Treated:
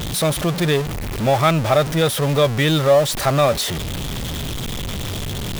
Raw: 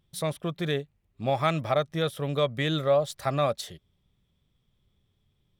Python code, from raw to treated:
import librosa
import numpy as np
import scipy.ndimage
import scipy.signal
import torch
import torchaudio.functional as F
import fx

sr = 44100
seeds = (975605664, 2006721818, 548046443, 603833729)

y = x + 0.5 * 10.0 ** (-26.5 / 20.0) * np.sign(x)
y = y * 10.0 ** (7.0 / 20.0)